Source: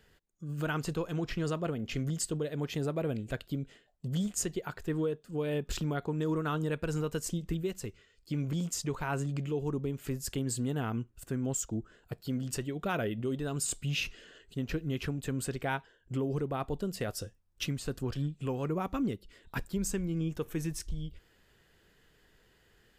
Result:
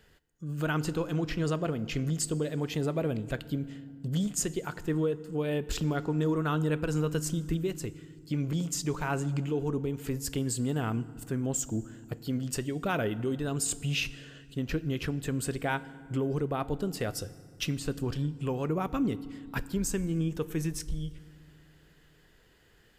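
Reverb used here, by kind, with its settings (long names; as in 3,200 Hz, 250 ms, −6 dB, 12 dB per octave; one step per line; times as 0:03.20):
feedback delay network reverb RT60 2.1 s, low-frequency decay 1.6×, high-frequency decay 0.65×, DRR 16 dB
level +2.5 dB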